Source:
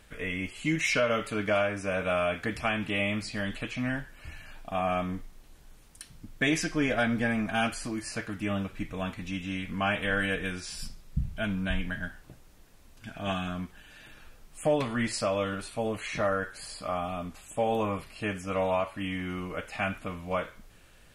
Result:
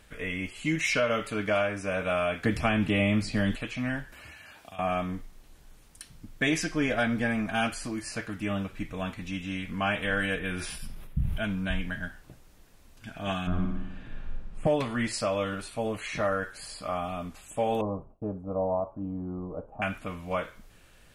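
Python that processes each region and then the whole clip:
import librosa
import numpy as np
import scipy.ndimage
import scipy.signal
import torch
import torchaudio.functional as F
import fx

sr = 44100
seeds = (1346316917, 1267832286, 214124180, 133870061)

y = fx.chain(x, sr, fx.low_shelf(hz=480.0, db=8.5),
    fx.band_squash(depth_pct=40), at=(2.44, 3.56))
y = fx.chain(y, sr, fx.highpass(hz=73.0, slope=24),
    fx.peak_eq(hz=120.0, db=-9.5, octaves=1.8),
    fx.band_squash(depth_pct=100), at=(4.12, 4.79))
y = fx.chain(y, sr, fx.band_shelf(hz=5800.0, db=-11.0, octaves=1.2),
    fx.sustainer(db_per_s=32.0), at=(10.39, 11.38))
y = fx.chain(y, sr, fx.lowpass(hz=3500.0, slope=6),
    fx.tilt_eq(slope=-3.0),
    fx.room_flutter(wall_m=10.0, rt60_s=1.0), at=(13.47, 14.67))
y = fx.chain(y, sr, fx.cheby2_lowpass(hz=1800.0, order=4, stop_db=40),
    fx.gate_hold(open_db=-41.0, close_db=-47.0, hold_ms=71.0, range_db=-21, attack_ms=1.4, release_ms=100.0), at=(17.81, 19.82))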